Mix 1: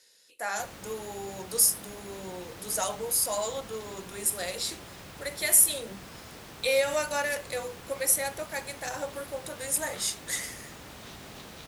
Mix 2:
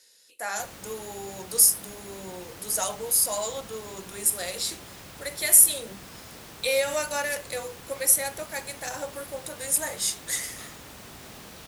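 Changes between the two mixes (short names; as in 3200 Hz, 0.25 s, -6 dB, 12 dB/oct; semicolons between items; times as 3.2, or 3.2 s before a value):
second sound: entry +0.65 s; master: add high shelf 5500 Hz +5.5 dB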